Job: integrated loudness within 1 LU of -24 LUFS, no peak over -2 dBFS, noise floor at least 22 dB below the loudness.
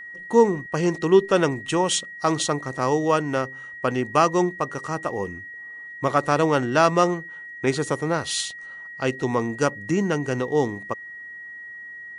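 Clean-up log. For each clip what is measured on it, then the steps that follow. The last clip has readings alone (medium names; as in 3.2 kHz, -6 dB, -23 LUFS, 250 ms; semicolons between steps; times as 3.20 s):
steady tone 1.9 kHz; tone level -36 dBFS; loudness -23.0 LUFS; peak level -4.5 dBFS; loudness target -24.0 LUFS
-> band-stop 1.9 kHz, Q 30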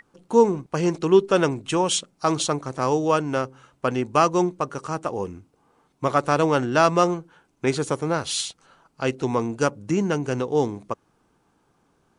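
steady tone not found; loudness -23.0 LUFS; peak level -5.0 dBFS; loudness target -24.0 LUFS
-> trim -1 dB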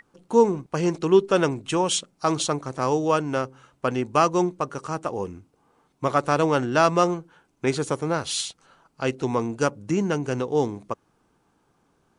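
loudness -24.0 LUFS; peak level -6.0 dBFS; noise floor -68 dBFS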